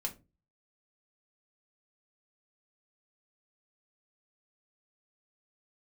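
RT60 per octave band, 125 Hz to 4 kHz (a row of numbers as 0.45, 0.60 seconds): 0.50, 0.40, 0.30, 0.25, 0.20, 0.20 seconds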